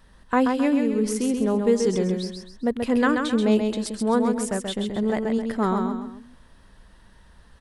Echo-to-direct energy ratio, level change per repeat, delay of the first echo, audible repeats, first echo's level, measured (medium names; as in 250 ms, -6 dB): -4.5 dB, -8.5 dB, 132 ms, 3, -5.0 dB